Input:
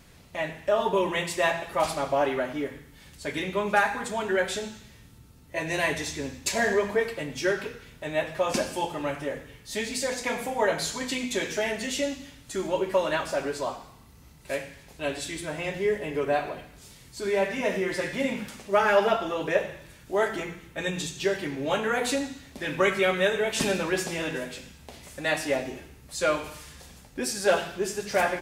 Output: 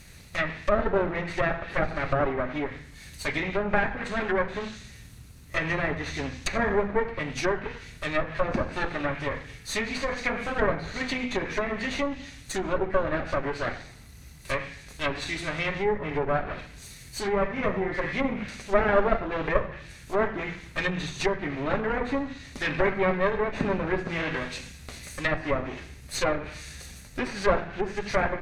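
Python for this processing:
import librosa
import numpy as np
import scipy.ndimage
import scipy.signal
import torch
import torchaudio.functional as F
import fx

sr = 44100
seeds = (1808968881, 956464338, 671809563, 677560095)

y = fx.lower_of_two(x, sr, delay_ms=0.47)
y = fx.env_lowpass_down(y, sr, base_hz=1100.0, full_db=-25.0)
y = fx.peak_eq(y, sr, hz=340.0, db=-7.0, octaves=2.6)
y = y * librosa.db_to_amplitude(7.5)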